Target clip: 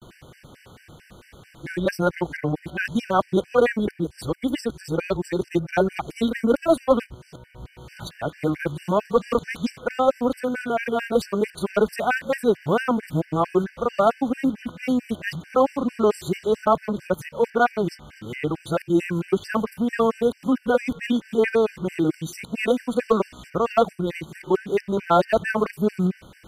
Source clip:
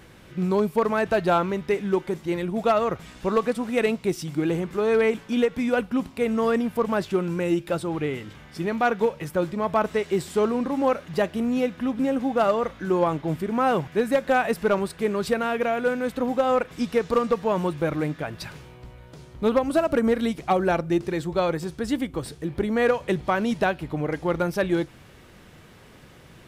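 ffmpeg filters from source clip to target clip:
ffmpeg -i in.wav -af "areverse,afftfilt=real='re*gt(sin(2*PI*4.5*pts/sr)*(1-2*mod(floor(b*sr/1024/1500),2)),0)':imag='im*gt(sin(2*PI*4.5*pts/sr)*(1-2*mod(floor(b*sr/1024/1500),2)),0)':win_size=1024:overlap=0.75,volume=4dB" out.wav

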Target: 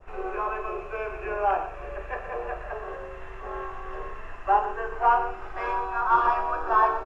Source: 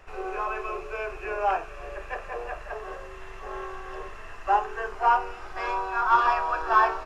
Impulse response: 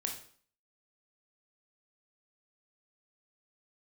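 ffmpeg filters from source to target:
-filter_complex "[0:a]highshelf=frequency=3400:gain=-9,asplit=2[link_01][link_02];[link_02]aecho=0:1:120:0.282[link_03];[link_01][link_03]amix=inputs=2:normalize=0,adynamicequalizer=threshold=0.0141:dfrequency=2100:dqfactor=0.75:tfrequency=2100:tqfactor=0.75:attack=5:release=100:ratio=0.375:range=3:mode=cutabove:tftype=bell,asplit=2[link_04][link_05];[link_05]lowpass=frequency=5000:width=0.5412,lowpass=frequency=5000:width=1.3066[link_06];[1:a]atrim=start_sample=2205[link_07];[link_06][link_07]afir=irnorm=-1:irlink=0,volume=-5.5dB[link_08];[link_04][link_08]amix=inputs=2:normalize=0,volume=-1.5dB"

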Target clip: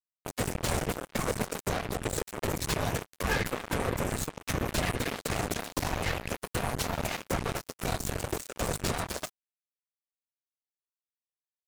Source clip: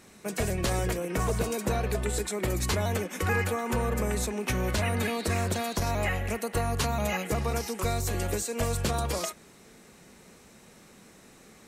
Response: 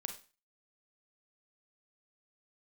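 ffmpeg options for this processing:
-af "afftfilt=real='hypot(re,im)*cos(2*PI*random(0))':imag='hypot(re,im)*sin(2*PI*random(1))':win_size=512:overlap=0.75,acontrast=70,acrusher=bits=3:mix=0:aa=0.5,volume=-3dB"

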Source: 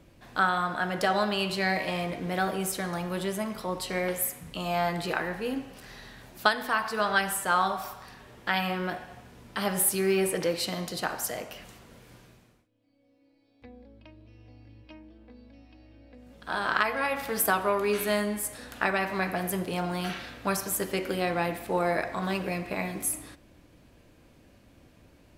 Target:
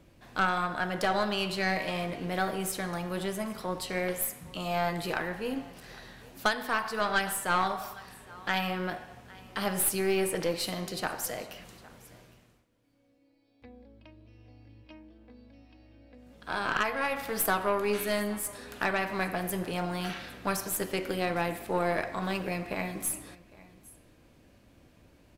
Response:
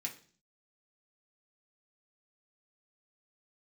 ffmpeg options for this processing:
-af "aecho=1:1:809:0.0794,aeval=exprs='(tanh(7.08*val(0)+0.5)-tanh(0.5))/7.08':channel_layout=same"

